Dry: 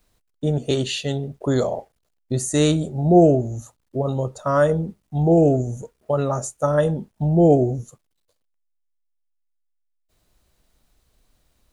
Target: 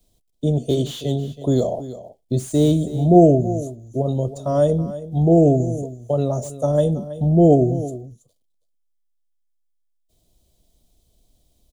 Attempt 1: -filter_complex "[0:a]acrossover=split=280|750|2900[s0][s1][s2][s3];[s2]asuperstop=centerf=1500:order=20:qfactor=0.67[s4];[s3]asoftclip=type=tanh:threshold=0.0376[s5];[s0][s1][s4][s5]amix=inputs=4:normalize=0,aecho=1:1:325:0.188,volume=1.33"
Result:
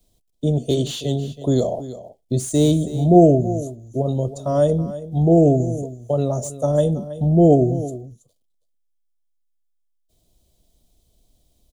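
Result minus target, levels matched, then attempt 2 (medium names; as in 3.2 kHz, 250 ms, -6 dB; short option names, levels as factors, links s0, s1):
saturation: distortion -6 dB
-filter_complex "[0:a]acrossover=split=280|750|2900[s0][s1][s2][s3];[s2]asuperstop=centerf=1500:order=20:qfactor=0.67[s4];[s3]asoftclip=type=tanh:threshold=0.0141[s5];[s0][s1][s4][s5]amix=inputs=4:normalize=0,aecho=1:1:325:0.188,volume=1.33"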